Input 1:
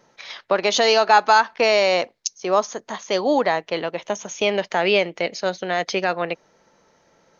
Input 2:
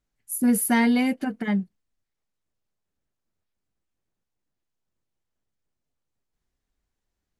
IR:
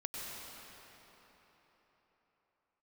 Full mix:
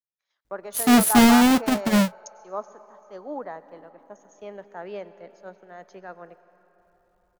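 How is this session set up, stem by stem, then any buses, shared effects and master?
-17.0 dB, 0.00 s, send -13 dB, high-order bell 3.6 kHz -14.5 dB; three bands expanded up and down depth 100%
+1.0 dB, 0.45 s, no send, square wave that keeps the level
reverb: on, RT60 4.3 s, pre-delay 90 ms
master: none

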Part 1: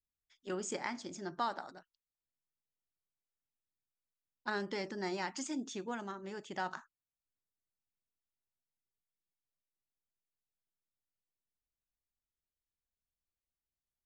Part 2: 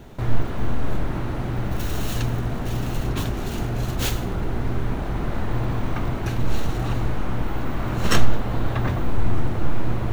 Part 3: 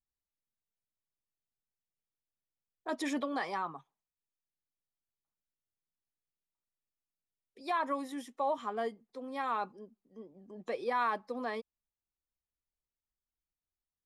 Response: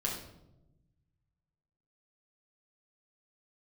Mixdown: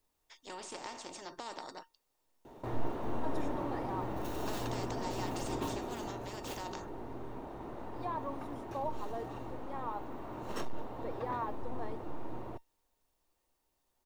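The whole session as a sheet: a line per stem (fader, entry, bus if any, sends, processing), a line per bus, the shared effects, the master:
+3.0 dB, 0.00 s, no send, spectrum-flattening compressor 4:1
5.61 s -4.5 dB -> 6.41 s -11.5 dB, 2.45 s, no send, bass shelf 73 Hz -10 dB; overload inside the chain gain 16.5 dB
-5.5 dB, 0.35 s, no send, none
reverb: none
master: high-order bell 540 Hz +9.5 dB 2.4 oct; feedback comb 920 Hz, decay 0.17 s, harmonics all, mix 70%

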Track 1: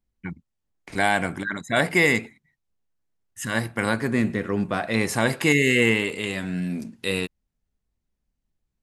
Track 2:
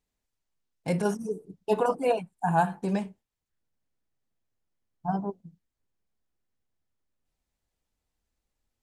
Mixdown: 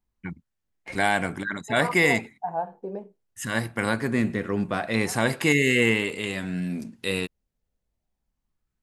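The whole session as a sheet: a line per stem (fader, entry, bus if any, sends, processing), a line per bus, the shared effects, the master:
-1.5 dB, 0.00 s, no send, none
+2.5 dB, 0.00 s, no send, wah-wah 0.24 Hz 430–2000 Hz, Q 2.9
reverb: none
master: none

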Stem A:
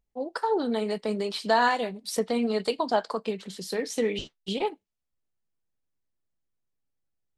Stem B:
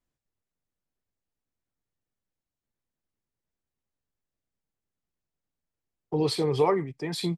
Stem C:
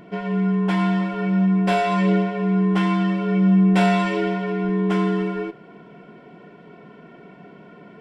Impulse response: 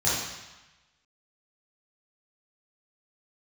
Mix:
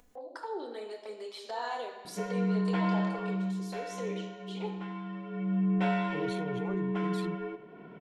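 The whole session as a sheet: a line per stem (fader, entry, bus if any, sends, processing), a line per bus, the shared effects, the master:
-10.5 dB, 0.00 s, bus A, send -18.5 dB, no echo send, steep high-pass 310 Hz 36 dB/octave
-9.0 dB, 0.00 s, bus A, no send, no echo send, local Wiener filter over 15 samples
3.17 s -8 dB -> 3.76 s -19.5 dB -> 5.04 s -19.5 dB -> 5.77 s -10.5 dB, 2.05 s, no bus, no send, echo send -14 dB, Bessel low-pass 3.3 kHz, order 2
bus A: 0.0 dB, touch-sensitive flanger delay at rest 4.1 ms, full sweep at -34 dBFS; peak limiter -32 dBFS, peak gain reduction 10.5 dB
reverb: on, RT60 1.1 s, pre-delay 3 ms
echo: feedback delay 96 ms, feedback 52%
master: peaking EQ 4.7 kHz -4.5 dB 0.24 oct; upward compressor, threshold -40 dBFS

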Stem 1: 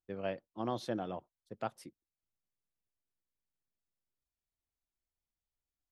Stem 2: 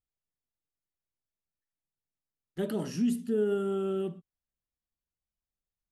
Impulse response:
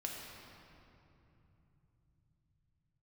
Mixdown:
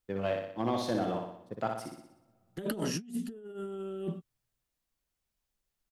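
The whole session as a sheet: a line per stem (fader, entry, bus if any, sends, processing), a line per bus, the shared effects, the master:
-2.5 dB, 0.00 s, send -23 dB, echo send -4 dB, waveshaping leveller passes 1
+3.0 dB, 0.00 s, no send, no echo send, peaking EQ 100 Hz -6 dB 1.2 oct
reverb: on, RT60 3.0 s, pre-delay 3 ms
echo: feedback delay 61 ms, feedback 54%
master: compressor with a negative ratio -33 dBFS, ratio -0.5

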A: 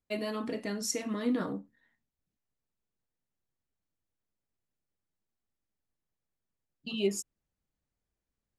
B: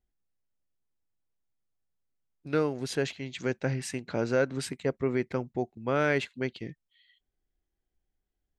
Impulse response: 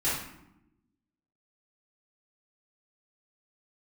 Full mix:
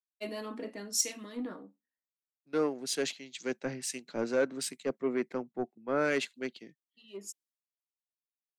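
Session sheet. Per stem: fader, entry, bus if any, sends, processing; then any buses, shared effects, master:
0.0 dB, 0.10 s, no send, saturation -20 dBFS, distortion -23 dB; auto duck -9 dB, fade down 1.85 s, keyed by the second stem
-2.5 dB, 0.00 s, no send, de-esser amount 80%; tone controls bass +3 dB, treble +7 dB; Chebyshev shaper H 7 -30 dB, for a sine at -12.5 dBFS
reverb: none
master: high-pass 210 Hz 24 dB/octave; saturation -23.5 dBFS, distortion -14 dB; three bands expanded up and down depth 100%

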